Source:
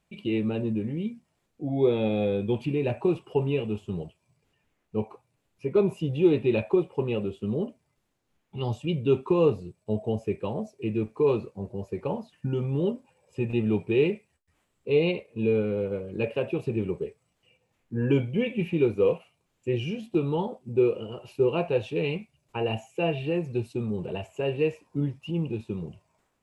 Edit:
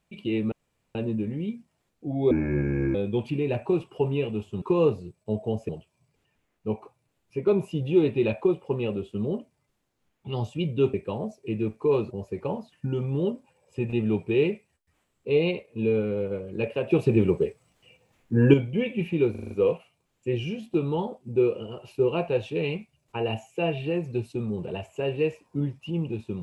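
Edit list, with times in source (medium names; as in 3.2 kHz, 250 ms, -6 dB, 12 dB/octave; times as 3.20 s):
0.52 s: insert room tone 0.43 s
1.88–2.30 s: speed 66%
9.22–10.29 s: move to 3.97 s
11.46–11.71 s: delete
16.51–18.14 s: gain +7.5 dB
18.91 s: stutter 0.04 s, 6 plays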